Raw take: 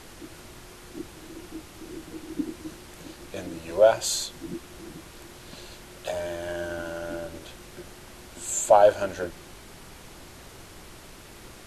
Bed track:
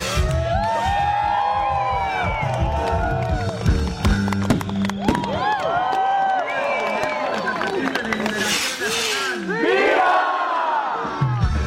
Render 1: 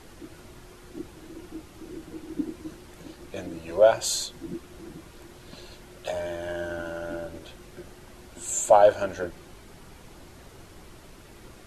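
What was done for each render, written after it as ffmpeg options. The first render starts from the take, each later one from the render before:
-af "afftdn=nr=6:nf=-47"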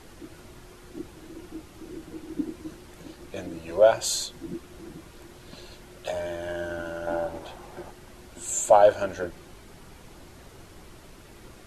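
-filter_complex "[0:a]asettb=1/sr,asplit=3[a][b][c];[a]atrim=end=7.074[d];[b]atrim=start=7.07:end=7.91,asetpts=PTS-STARTPTS,afade=t=in:d=0.004:c=qsin,afade=t=out:st=0.836:d=0.004:c=qsin,equalizer=f=820:w=1.4:g=13.5[e];[c]atrim=start=7.906[f];[d][e]acrossfade=d=0.004:c1=hsin:c2=qsin[g];[g][f]acrossfade=d=0.004:c1=qsin:c2=hsin"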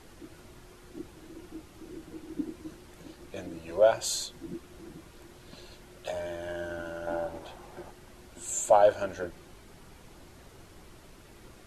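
-af "volume=-4dB"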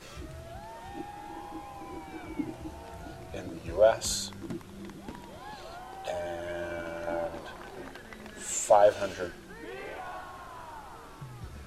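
-filter_complex "[1:a]volume=-24.5dB[a];[0:a][a]amix=inputs=2:normalize=0"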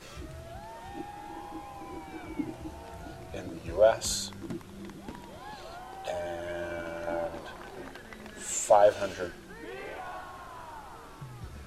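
-af anull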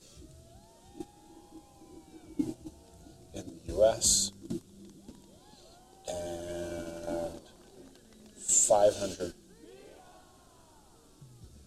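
-af "agate=range=-10dB:threshold=-37dB:ratio=16:detection=peak,equalizer=f=250:t=o:w=1:g=4,equalizer=f=1k:t=o:w=1:g=-8,equalizer=f=2k:t=o:w=1:g=-12,equalizer=f=4k:t=o:w=1:g=4,equalizer=f=8k:t=o:w=1:g=9"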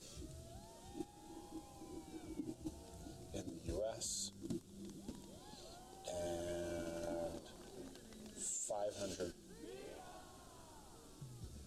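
-af "acompressor=threshold=-31dB:ratio=6,alimiter=level_in=9.5dB:limit=-24dB:level=0:latency=1:release=326,volume=-9.5dB"

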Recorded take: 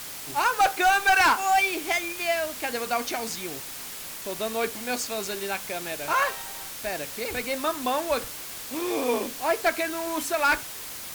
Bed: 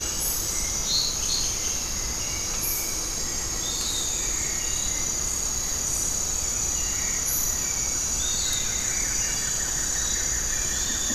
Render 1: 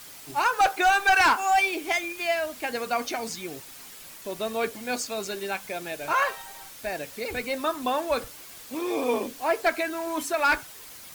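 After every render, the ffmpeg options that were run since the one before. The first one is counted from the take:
-af "afftdn=nr=8:nf=-38"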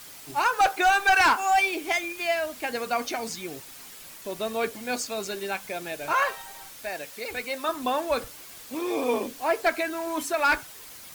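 -filter_complex "[0:a]asettb=1/sr,asplit=3[a][b][c];[a]atrim=end=6.834[d];[b]atrim=start=6.83:end=7.69,asetpts=PTS-STARTPTS,afade=t=in:d=0.004:c=qsin,afade=t=out:st=0.856:d=0.004:c=qsin,lowshelf=f=360:g=-9.5[e];[c]atrim=start=7.686[f];[d][e]acrossfade=d=0.004:c1=hsin:c2=qsin[g];[g][f]acrossfade=d=0.004:c1=qsin:c2=hsin"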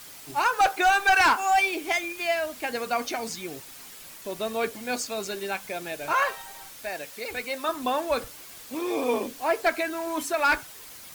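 -af anull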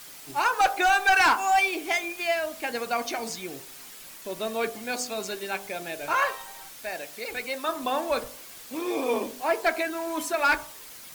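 -af "equalizer=f=80:w=2:g=-8,bandreject=f=49.77:t=h:w=4,bandreject=f=99.54:t=h:w=4,bandreject=f=149.31:t=h:w=4,bandreject=f=199.08:t=h:w=4,bandreject=f=248.85:t=h:w=4,bandreject=f=298.62:t=h:w=4,bandreject=f=348.39:t=h:w=4,bandreject=f=398.16:t=h:w=4,bandreject=f=447.93:t=h:w=4,bandreject=f=497.7:t=h:w=4,bandreject=f=547.47:t=h:w=4,bandreject=f=597.24:t=h:w=4,bandreject=f=647.01:t=h:w=4,bandreject=f=696.78:t=h:w=4,bandreject=f=746.55:t=h:w=4,bandreject=f=796.32:t=h:w=4,bandreject=f=846.09:t=h:w=4,bandreject=f=895.86:t=h:w=4,bandreject=f=945.63:t=h:w=4,bandreject=f=995.4:t=h:w=4,bandreject=f=1.04517k:t=h:w=4,bandreject=f=1.09494k:t=h:w=4,bandreject=f=1.14471k:t=h:w=4,bandreject=f=1.19448k:t=h:w=4,bandreject=f=1.24425k:t=h:w=4"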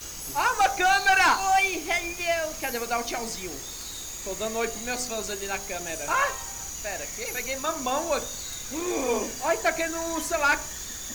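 -filter_complex "[1:a]volume=-11dB[a];[0:a][a]amix=inputs=2:normalize=0"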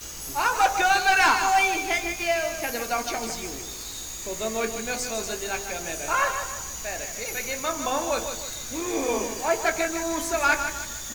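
-filter_complex "[0:a]asplit=2[a][b];[b]adelay=18,volume=-10.5dB[c];[a][c]amix=inputs=2:normalize=0,aecho=1:1:154|308|462|616|770:0.376|0.154|0.0632|0.0259|0.0106"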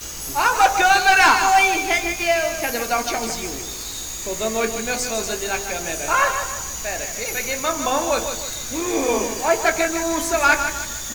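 -af "volume=5.5dB"

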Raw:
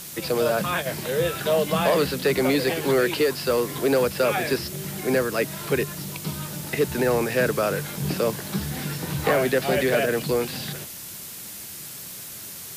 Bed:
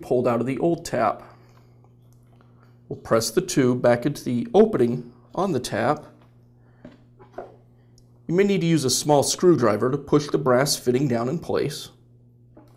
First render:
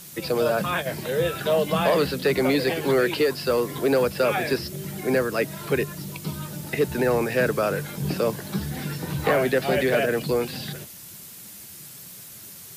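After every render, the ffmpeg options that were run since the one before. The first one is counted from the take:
-af "afftdn=nr=6:nf=-38"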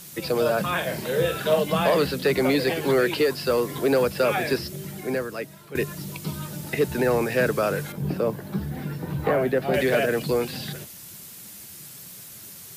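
-filter_complex "[0:a]asettb=1/sr,asplit=3[a][b][c];[a]atrim=end=0.764[d];[b]atrim=start=0.76:end=1.61,asetpts=PTS-STARTPTS,afade=t=in:d=0.004:c=qsin,afade=t=out:st=0.846:d=0.004:c=qsin,asplit=2[e][f];[f]adelay=45,volume=-6.5dB[g];[e][g]amix=inputs=2:normalize=0,atrim=end_sample=37485[h];[c]atrim=start=1.606[i];[d][h]acrossfade=d=0.004:c1=hsin:c2=qsin[j];[j][i]acrossfade=d=0.004:c1=qsin:c2=hsin,asettb=1/sr,asplit=3[k][l][m];[k]atrim=end=7.924[n];[l]atrim=start=7.92:end=9.74,asetpts=PTS-STARTPTS,afade=t=in:d=0.004:c=qsin,afade=t=out:st=1.816:d=0.004:c=qsin,equalizer=f=6.7k:w=0.32:g=-12.5[o];[m]atrim=start=9.736[p];[n][o]acrossfade=d=0.004:c1=hsin:c2=qsin[q];[q][p]acrossfade=d=0.004:c1=qsin:c2=hsin,asplit=2[r][s];[r]atrim=end=5.75,asetpts=PTS-STARTPTS,afade=t=out:st=4.57:d=1.18:silence=0.141254[t];[s]atrim=start=5.75,asetpts=PTS-STARTPTS,afade=t=in:d=0.004:c=hsin:silence=0.141254[u];[t][u]concat=n=2:v=0:a=1"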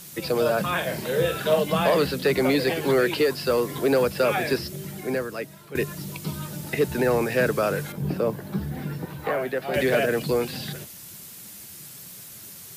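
-filter_complex "[0:a]asettb=1/sr,asplit=3[a][b][c];[a]atrim=end=9.054[d];[b]atrim=start=9.05:end=9.76,asetpts=PTS-STARTPTS,afade=t=in:d=0.004:c=qsin,afade=t=out:st=0.706:d=0.004:c=qsin,lowshelf=f=430:g=-10.5[e];[c]atrim=start=9.756[f];[d][e]acrossfade=d=0.004:c1=hsin:c2=qsin[g];[g][f]acrossfade=d=0.004:c1=qsin:c2=hsin"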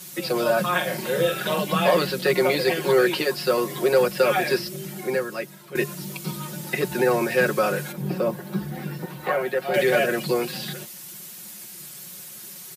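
-af "highpass=f=220:p=1,aecho=1:1:5.5:0.88"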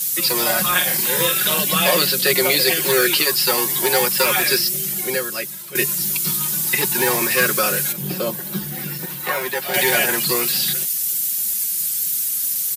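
-filter_complex "[0:a]acrossover=split=670[a][b];[a]acrusher=samples=23:mix=1:aa=0.000001:lfo=1:lforange=23:lforate=0.33[c];[b]crystalizer=i=5.5:c=0[d];[c][d]amix=inputs=2:normalize=0"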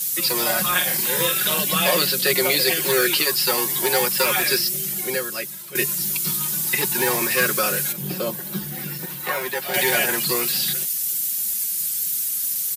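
-af "volume=-2.5dB"

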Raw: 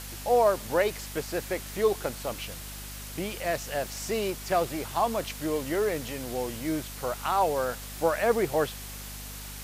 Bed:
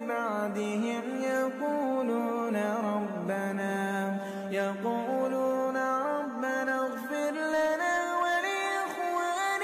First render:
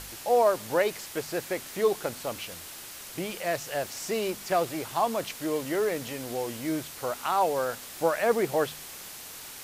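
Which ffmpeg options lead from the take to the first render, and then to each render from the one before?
-af "bandreject=f=50:t=h:w=4,bandreject=f=100:t=h:w=4,bandreject=f=150:t=h:w=4,bandreject=f=200:t=h:w=4,bandreject=f=250:t=h:w=4"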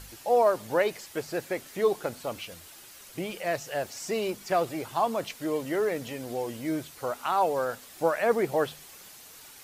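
-af "afftdn=nr=8:nf=-43"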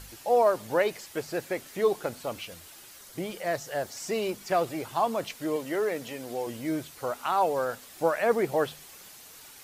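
-filter_complex "[0:a]asettb=1/sr,asplit=3[a][b][c];[a]atrim=end=2.974[d];[b]atrim=start=2.97:end=3.97,asetpts=PTS-STARTPTS,afade=t=in:d=0.004:c=qsin,afade=t=out:st=0.996:d=0.004:c=qsin,equalizer=f=2.6k:w=4.8:g=-7.5[e];[c]atrim=start=3.966[f];[d][e]acrossfade=d=0.004:c1=hsin:c2=qsin[g];[g][f]acrossfade=d=0.004:c1=qsin:c2=hsin,asettb=1/sr,asplit=3[h][i][j];[h]atrim=end=5.564[k];[i]atrim=start=5.56:end=6.47,asetpts=PTS-STARTPTS,afade=t=in:d=0.004:c=qsin,afade=t=out:st=0.906:d=0.004:c=qsin,highpass=f=210:p=1[l];[j]atrim=start=6.466[m];[k][l]acrossfade=d=0.004:c1=hsin:c2=qsin[n];[n][m]acrossfade=d=0.004:c1=qsin:c2=hsin"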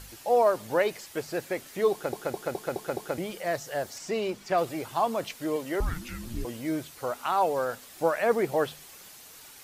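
-filter_complex "[0:a]asettb=1/sr,asplit=3[a][b][c];[a]atrim=end=3.984[d];[b]atrim=start=3.98:end=4.58,asetpts=PTS-STARTPTS,afade=t=in:d=0.004:c=qsin,afade=t=out:st=0.596:d=0.004:c=qsin,equalizer=f=13k:t=o:w=1.2:g=-10[e];[c]atrim=start=4.576[f];[d][e]acrossfade=d=0.004:c1=hsin:c2=qsin[g];[g][f]acrossfade=d=0.004:c1=qsin:c2=hsin,asettb=1/sr,asplit=3[h][i][j];[h]atrim=end=5.804[k];[i]atrim=start=5.8:end=6.45,asetpts=PTS-STARTPTS,afade=t=in:d=0.004:c=qsin,afade=t=out:st=0.646:d=0.004:c=qsin,afreqshift=-470[l];[j]atrim=start=6.446[m];[k][l]acrossfade=d=0.004:c1=hsin:c2=qsin[n];[n][m]acrossfade=d=0.004:c1=qsin:c2=hsin,asplit=7[o][p][q][r][s][t][u];[o]atrim=end=2.132[v];[p]atrim=start=1.918:end=2.132[w];[q]atrim=start=1.918:end=2.132[x];[r]atrim=start=1.918:end=2.132[y];[s]atrim=start=1.918:end=2.132[z];[t]atrim=start=1.918:end=2.132[aa];[u]atrim=start=3.178[ab];[v][w]acrossfade=d=0.004:c1=hsin:c2=hsin[ac];[ac][x]acrossfade=d=0.004:c1=hsin:c2=hsin[ad];[ad][y]acrossfade=d=0.004:c1=hsin:c2=hsin[ae];[ae][z]acrossfade=d=0.004:c1=hsin:c2=hsin[af];[af][aa]acrossfade=d=0.004:c1=hsin:c2=hsin[ag];[ag][ab]acrossfade=d=0.004:c1=hsin:c2=hsin"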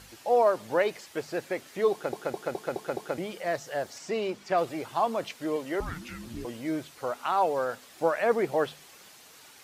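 -af "highpass=f=140:p=1,highshelf=f=8.8k:g=-10.5"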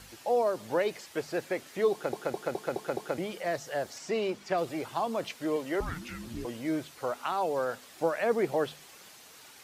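-filter_complex "[0:a]acrossover=split=460|3000[a][b][c];[b]acompressor=threshold=-29dB:ratio=6[d];[a][d][c]amix=inputs=3:normalize=0"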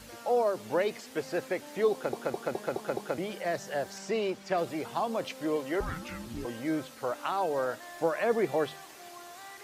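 -filter_complex "[1:a]volume=-18.5dB[a];[0:a][a]amix=inputs=2:normalize=0"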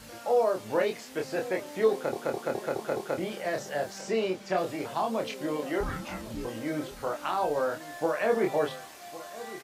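-filter_complex "[0:a]asplit=2[a][b];[b]adelay=27,volume=-3.5dB[c];[a][c]amix=inputs=2:normalize=0,asplit=2[d][e];[e]adelay=1108,volume=-16dB,highshelf=f=4k:g=-24.9[f];[d][f]amix=inputs=2:normalize=0"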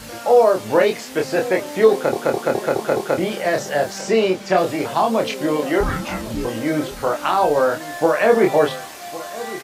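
-af "volume=11.5dB,alimiter=limit=-3dB:level=0:latency=1"

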